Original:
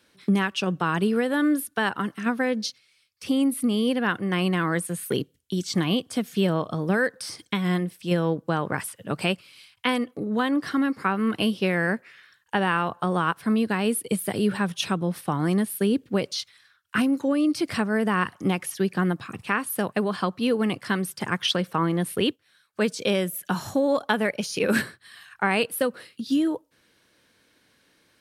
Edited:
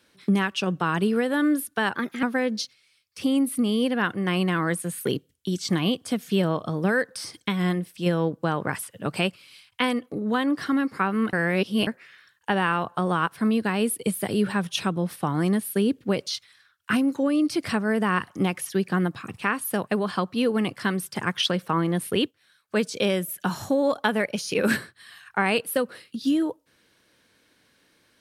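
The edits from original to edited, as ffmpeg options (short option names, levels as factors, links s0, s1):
-filter_complex "[0:a]asplit=5[s0][s1][s2][s3][s4];[s0]atrim=end=1.954[s5];[s1]atrim=start=1.95:end=2.28,asetpts=PTS-STARTPTS,asetrate=52038,aresample=44100,atrim=end_sample=12333,asetpts=PTS-STARTPTS[s6];[s2]atrim=start=2.276:end=11.382[s7];[s3]atrim=start=11.378:end=11.922,asetpts=PTS-STARTPTS,areverse[s8];[s4]atrim=start=11.918[s9];[s5][s6]acrossfade=d=0.004:c1=hsin:c2=hsin[s10];[s10][s7]acrossfade=d=0.004:c1=hsin:c2=hsin[s11];[s11][s8]acrossfade=d=0.004:c1=hsin:c2=hsin[s12];[s12][s9]acrossfade=d=0.004:c1=hsin:c2=hsin"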